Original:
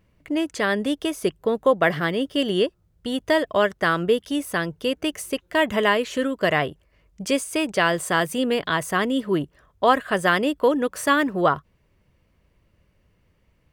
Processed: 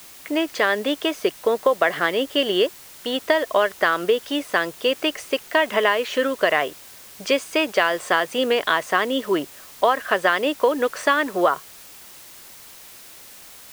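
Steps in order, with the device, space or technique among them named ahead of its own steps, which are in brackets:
baby monitor (band-pass filter 440–4,400 Hz; downward compressor, threshold −21 dBFS, peak gain reduction 9.5 dB; white noise bed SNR 21 dB)
level +7 dB

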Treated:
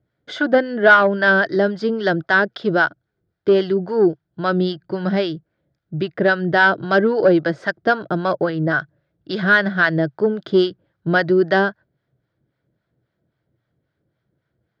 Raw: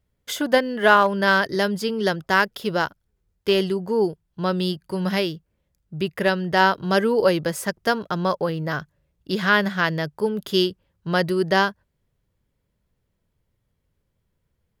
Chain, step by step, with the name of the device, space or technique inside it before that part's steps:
guitar amplifier with harmonic tremolo (two-band tremolo in antiphase 3.7 Hz, depth 70%, crossover 700 Hz; soft clipping −13.5 dBFS, distortion −15 dB; loudspeaker in its box 110–4,300 Hz, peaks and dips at 130 Hz +8 dB, 320 Hz +9 dB, 670 Hz +7 dB, 1,000 Hz −5 dB, 1,500 Hz +8 dB, 2,700 Hz −8 dB)
level +5.5 dB

